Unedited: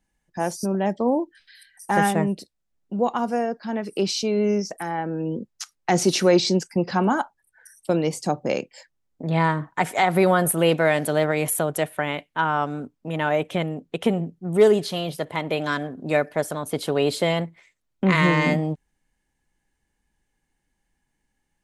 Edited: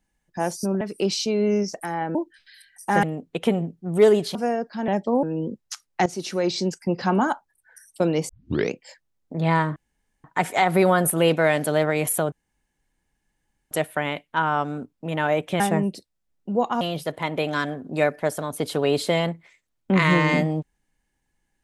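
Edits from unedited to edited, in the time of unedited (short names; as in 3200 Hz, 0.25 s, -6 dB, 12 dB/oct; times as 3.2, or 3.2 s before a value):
0.81–1.16 swap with 3.78–5.12
2.04–3.25 swap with 13.62–14.94
5.95–6.99 fade in, from -15.5 dB
8.18 tape start 0.43 s
9.65 insert room tone 0.48 s
11.73 insert room tone 1.39 s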